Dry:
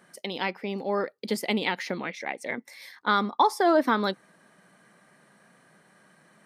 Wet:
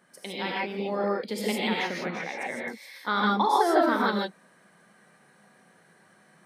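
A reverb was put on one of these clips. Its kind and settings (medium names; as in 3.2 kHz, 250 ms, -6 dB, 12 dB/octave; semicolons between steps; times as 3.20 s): gated-style reverb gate 180 ms rising, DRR -4 dB; trim -5 dB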